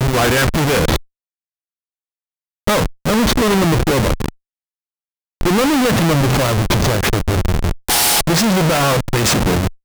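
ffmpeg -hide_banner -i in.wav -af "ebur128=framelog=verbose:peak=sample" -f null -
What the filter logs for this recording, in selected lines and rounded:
Integrated loudness:
  I:         -15.4 LUFS
  Threshold: -25.5 LUFS
Loudness range:
  LRA:         3.9 LU
  Threshold: -36.8 LUFS
  LRA low:   -18.8 LUFS
  LRA high:  -14.9 LUFS
Sample peak:
  Peak:       -7.3 dBFS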